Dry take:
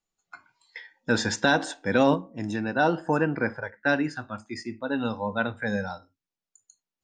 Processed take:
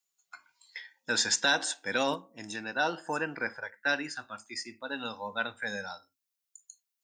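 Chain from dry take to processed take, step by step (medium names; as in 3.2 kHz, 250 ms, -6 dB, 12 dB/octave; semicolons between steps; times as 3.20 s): tilt EQ +4 dB/octave; trim -5.5 dB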